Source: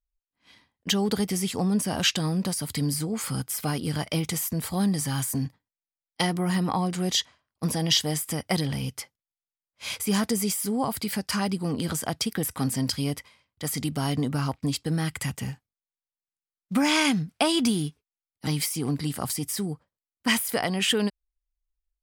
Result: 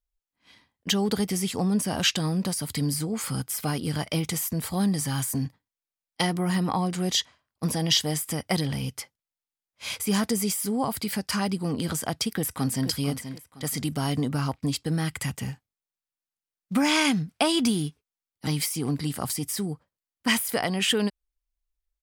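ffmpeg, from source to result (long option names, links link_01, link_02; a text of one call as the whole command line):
ffmpeg -i in.wav -filter_complex "[0:a]asplit=2[link_01][link_02];[link_02]afade=type=in:start_time=12.32:duration=0.01,afade=type=out:start_time=12.89:duration=0.01,aecho=0:1:480|960|1440:0.316228|0.0948683|0.0284605[link_03];[link_01][link_03]amix=inputs=2:normalize=0" out.wav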